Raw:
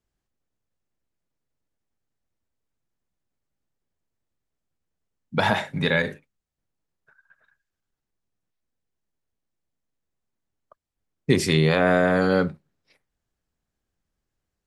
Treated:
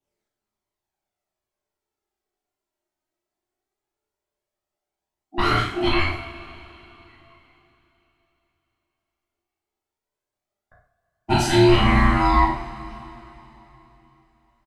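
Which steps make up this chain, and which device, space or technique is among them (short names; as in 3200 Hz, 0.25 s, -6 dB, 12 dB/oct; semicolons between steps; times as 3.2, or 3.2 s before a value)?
HPF 68 Hz; alien voice (ring modulator 510 Hz; flange 0.17 Hz, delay 0.3 ms, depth 3 ms, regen +39%); doubler 37 ms -6.5 dB; two-slope reverb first 0.48 s, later 3.6 s, from -20 dB, DRR -7 dB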